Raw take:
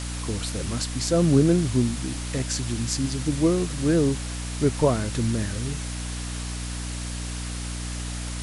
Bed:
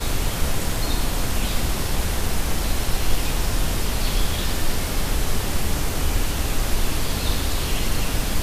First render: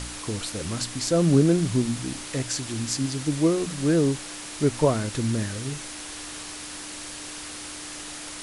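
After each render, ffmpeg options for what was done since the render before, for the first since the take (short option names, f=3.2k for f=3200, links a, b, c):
-af "bandreject=f=60:t=h:w=4,bandreject=f=120:t=h:w=4,bandreject=f=180:t=h:w=4,bandreject=f=240:t=h:w=4"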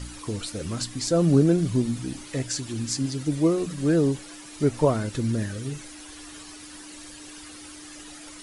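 -af "afftdn=nr=11:nf=-38"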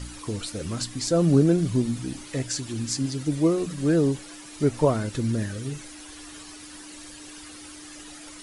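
-af anull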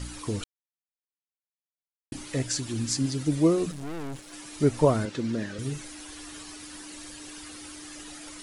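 -filter_complex "[0:a]asettb=1/sr,asplit=3[a][b][c];[a]atrim=end=3.714[d];[b]atrim=start=3.71:end=4.33,asetpts=PTS-STARTPTS,afade=t=in:d=0.004:c=qsin,afade=t=out:st=0.616:d=0.004:c=qsin,aeval=exprs='(tanh(56.2*val(0)+0.8)-tanh(0.8))/56.2':c=same[e];[c]atrim=start=4.326[f];[d][e]acrossfade=d=0.004:c1=hsin:c2=qsin[g];[g][f]acrossfade=d=0.004:c1=qsin:c2=hsin,asettb=1/sr,asplit=3[h][i][j];[h]atrim=end=5.054[k];[i]atrim=start=5.05:end=5.59,asetpts=PTS-STARTPTS,afade=t=in:d=0.004:c=qsin,afade=t=out:st=0.536:d=0.004:c=qsin,highpass=200,lowpass=5.2k[l];[j]atrim=start=5.586[m];[k][l]acrossfade=d=0.004:c1=hsin:c2=qsin[n];[n][m]acrossfade=d=0.004:c1=qsin:c2=hsin,asplit=3[o][p][q];[o]atrim=end=0.44,asetpts=PTS-STARTPTS,afade=t=out:st=0.436:d=0.004:c=hsin[r];[p]atrim=start=0.44:end=2.12,asetpts=PTS-STARTPTS,volume=0[s];[q]atrim=start=2.12,asetpts=PTS-STARTPTS,afade=t=in:d=0.004:c=hsin[t];[r][s][t]concat=n=3:v=0:a=1"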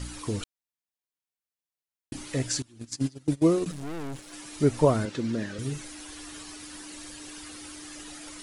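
-filter_complex "[0:a]asettb=1/sr,asplit=3[a][b][c];[a]atrim=end=2.624[d];[b]atrim=start=2.62:end=3.66,asetpts=PTS-STARTPTS,afade=t=in:d=0.004:c=qsin,afade=t=out:st=1.036:d=0.004:c=qsin,agate=range=-22dB:threshold=-27dB:ratio=16:release=100:detection=peak[e];[c]atrim=start=3.656[f];[d][e]acrossfade=d=0.004:c1=hsin:c2=qsin[g];[g][f]acrossfade=d=0.004:c1=qsin:c2=hsin"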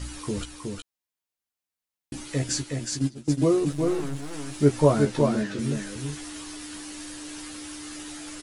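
-filter_complex "[0:a]asplit=2[a][b];[b]adelay=14,volume=-4.5dB[c];[a][c]amix=inputs=2:normalize=0,aecho=1:1:367:0.631"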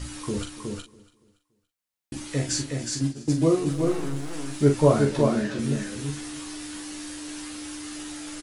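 -filter_complex "[0:a]asplit=2[a][b];[b]adelay=43,volume=-6.5dB[c];[a][c]amix=inputs=2:normalize=0,aecho=1:1:284|568|852:0.0944|0.033|0.0116"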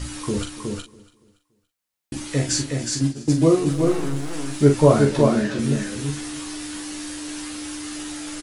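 -af "volume=4.5dB,alimiter=limit=-3dB:level=0:latency=1"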